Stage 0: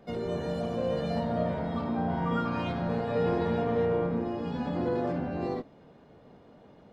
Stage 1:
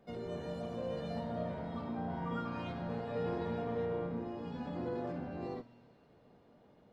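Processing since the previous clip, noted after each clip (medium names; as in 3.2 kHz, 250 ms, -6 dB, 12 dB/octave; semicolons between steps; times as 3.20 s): feedback comb 120 Hz, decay 1.6 s, mix 60%; feedback echo behind a high-pass 133 ms, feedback 81%, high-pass 2 kHz, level -19 dB; trim -1.5 dB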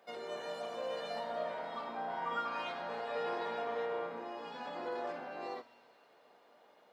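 high-pass 720 Hz 12 dB/octave; trim +7 dB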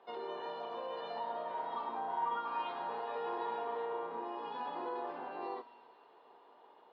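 compression 2:1, threshold -41 dBFS, peak gain reduction 5.5 dB; cabinet simulation 170–3600 Hz, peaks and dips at 210 Hz -5 dB, 390 Hz +6 dB, 580 Hz -6 dB, 950 Hz +9 dB, 1.5 kHz -4 dB, 2.2 kHz -8 dB; trim +1.5 dB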